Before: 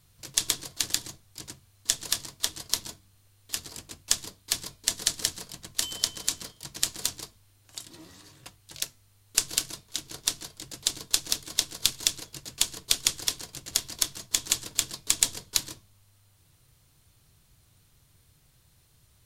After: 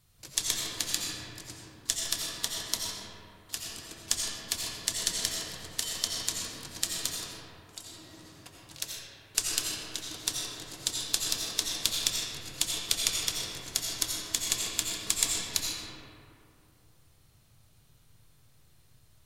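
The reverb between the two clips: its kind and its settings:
comb and all-pass reverb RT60 2.7 s, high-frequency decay 0.45×, pre-delay 45 ms, DRR −2.5 dB
level −4.5 dB

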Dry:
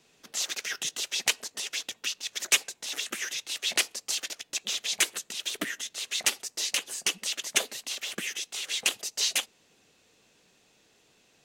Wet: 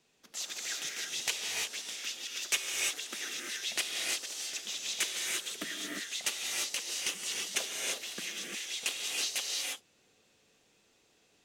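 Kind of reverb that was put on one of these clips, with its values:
reverb whose tail is shaped and stops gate 370 ms rising, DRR −1.5 dB
level −8 dB

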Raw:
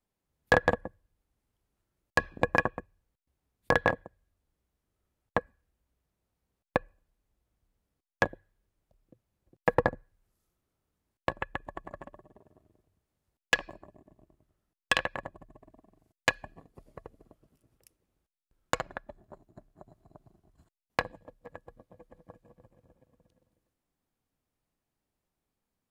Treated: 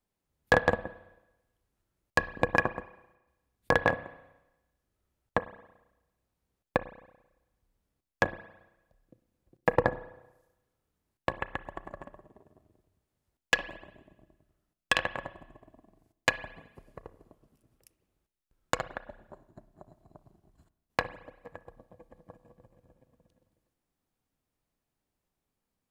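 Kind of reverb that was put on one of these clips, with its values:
spring reverb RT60 1 s, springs 32/55 ms, chirp 45 ms, DRR 14.5 dB

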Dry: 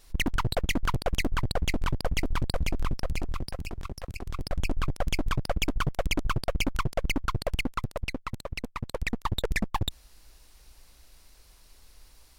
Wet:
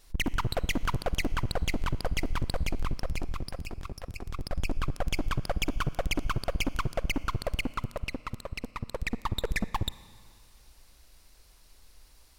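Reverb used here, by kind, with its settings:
four-comb reverb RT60 2 s, DRR 18.5 dB
level −2 dB

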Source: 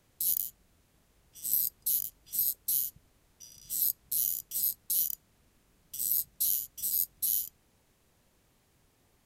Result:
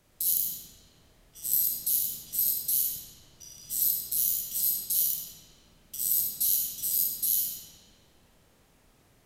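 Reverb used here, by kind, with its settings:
comb and all-pass reverb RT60 2.6 s, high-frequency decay 0.65×, pre-delay 5 ms, DRR −3 dB
level +1.5 dB

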